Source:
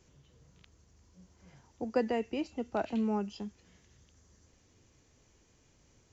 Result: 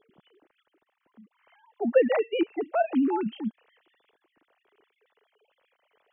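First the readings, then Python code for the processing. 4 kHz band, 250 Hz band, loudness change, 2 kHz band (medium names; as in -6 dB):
+6.0 dB, +6.5 dB, +8.0 dB, +8.5 dB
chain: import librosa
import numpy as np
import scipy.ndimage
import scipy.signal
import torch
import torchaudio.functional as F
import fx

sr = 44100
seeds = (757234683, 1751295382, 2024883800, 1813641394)

y = fx.sine_speech(x, sr)
y = y * 10.0 ** (8.0 / 20.0)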